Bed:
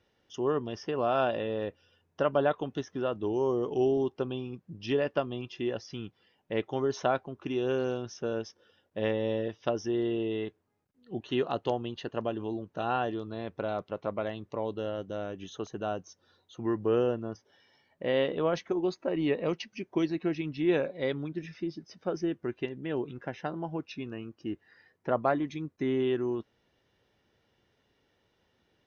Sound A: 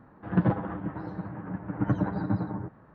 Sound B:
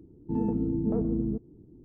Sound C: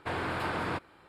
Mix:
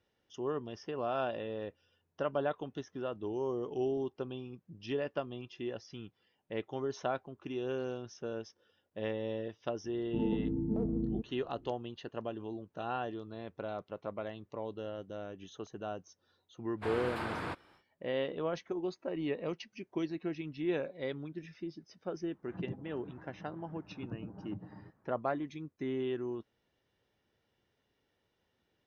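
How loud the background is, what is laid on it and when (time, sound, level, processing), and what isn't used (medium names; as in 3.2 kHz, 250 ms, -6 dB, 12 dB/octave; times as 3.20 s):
bed -7 dB
9.84 s: add B -5.5 dB + local Wiener filter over 15 samples
16.76 s: add C -5.5 dB, fades 0.10 s
22.22 s: add A -17.5 dB + low-pass that closes with the level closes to 470 Hz, closed at -22.5 dBFS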